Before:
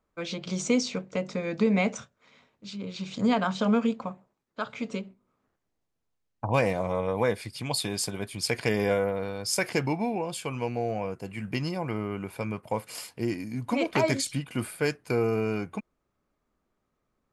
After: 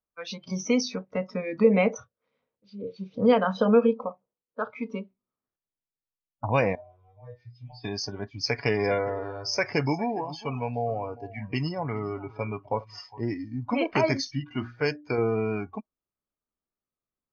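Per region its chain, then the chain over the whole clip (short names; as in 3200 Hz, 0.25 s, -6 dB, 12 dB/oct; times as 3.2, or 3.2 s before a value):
1.64–4.74 bell 490 Hz +13.5 dB 0.27 oct + mismatched tape noise reduction decoder only
6.75–7.84 low shelf 150 Hz +9.5 dB + compressor 10:1, threshold -29 dBFS + metallic resonator 120 Hz, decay 0.34 s, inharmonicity 0.002
8.39–13.56 comb 7.1 ms, depth 30% + echo 0.408 s -16 dB
14.27–15.18 high shelf 9900 Hz +10 dB + de-hum 59.36 Hz, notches 11
whole clip: spectral noise reduction 19 dB; Chebyshev low-pass 6300 Hz, order 10; gain +1.5 dB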